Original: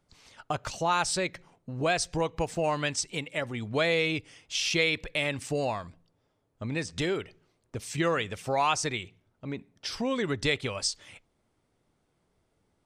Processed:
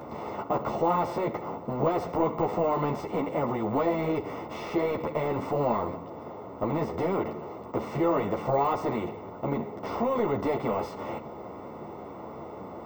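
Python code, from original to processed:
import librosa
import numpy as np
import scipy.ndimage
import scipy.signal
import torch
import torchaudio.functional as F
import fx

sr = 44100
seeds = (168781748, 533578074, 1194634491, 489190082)

y = fx.bin_compress(x, sr, power=0.4)
y = scipy.signal.sosfilt(scipy.signal.butter(2, 99.0, 'highpass', fs=sr, output='sos'), y)
y = 10.0 ** (-15.5 / 20.0) * np.tanh(y / 10.0 ** (-15.5 / 20.0))
y = scipy.signal.savgol_filter(y, 65, 4, mode='constant')
y = np.repeat(y[::2], 2)[:len(y)]
y = fx.ensemble(y, sr)
y = F.gain(torch.from_numpy(y), 3.0).numpy()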